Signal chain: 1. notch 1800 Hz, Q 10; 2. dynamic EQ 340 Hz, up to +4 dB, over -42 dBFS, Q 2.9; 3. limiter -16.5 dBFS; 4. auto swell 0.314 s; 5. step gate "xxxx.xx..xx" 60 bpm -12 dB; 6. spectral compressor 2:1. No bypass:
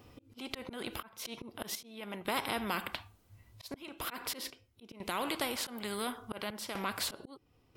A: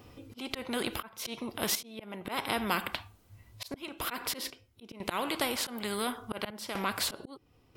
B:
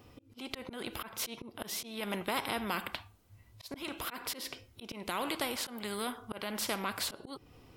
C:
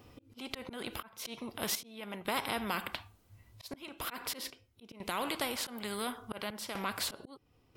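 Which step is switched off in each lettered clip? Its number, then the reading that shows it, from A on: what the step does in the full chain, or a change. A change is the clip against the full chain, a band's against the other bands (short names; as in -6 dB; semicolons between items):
3, momentary loudness spread change -1 LU; 5, momentary loudness spread change -3 LU; 2, momentary loudness spread change -2 LU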